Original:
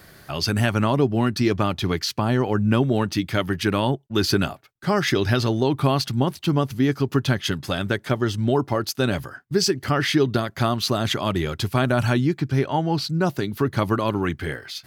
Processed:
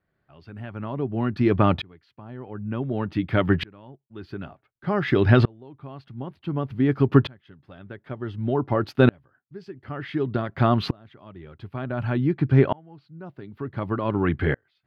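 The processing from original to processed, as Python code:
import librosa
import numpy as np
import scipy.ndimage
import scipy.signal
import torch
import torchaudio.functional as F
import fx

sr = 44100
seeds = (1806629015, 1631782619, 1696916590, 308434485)

y = fx.air_absorb(x, sr, metres=470.0)
y = fx.tremolo_decay(y, sr, direction='swelling', hz=0.55, depth_db=35)
y = y * 10.0 ** (8.0 / 20.0)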